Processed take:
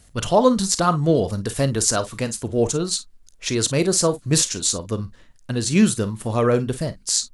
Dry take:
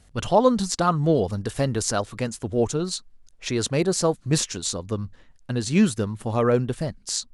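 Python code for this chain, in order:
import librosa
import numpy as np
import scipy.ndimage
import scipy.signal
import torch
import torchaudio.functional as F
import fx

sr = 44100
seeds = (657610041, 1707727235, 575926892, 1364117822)

p1 = fx.high_shelf(x, sr, hz=6100.0, db=9.0)
p2 = fx.notch(p1, sr, hz=800.0, q=12.0)
p3 = p2 + fx.room_early_taps(p2, sr, ms=(36, 51), db=(-16.0, -15.5), dry=0)
y = F.gain(torch.from_numpy(p3), 2.0).numpy()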